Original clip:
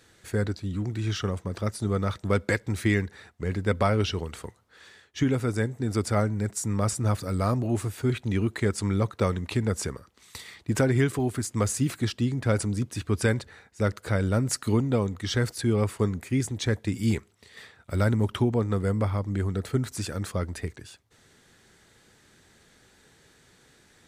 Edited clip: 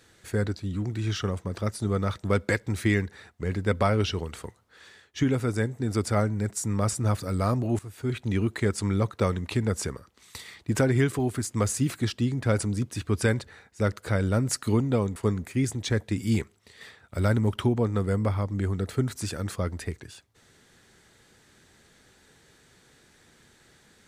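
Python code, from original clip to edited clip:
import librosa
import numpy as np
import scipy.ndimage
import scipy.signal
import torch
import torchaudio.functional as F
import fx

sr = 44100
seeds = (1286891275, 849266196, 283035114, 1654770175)

y = fx.edit(x, sr, fx.fade_in_from(start_s=7.79, length_s=0.49, floor_db=-15.0),
    fx.cut(start_s=15.16, length_s=0.76), tone=tone)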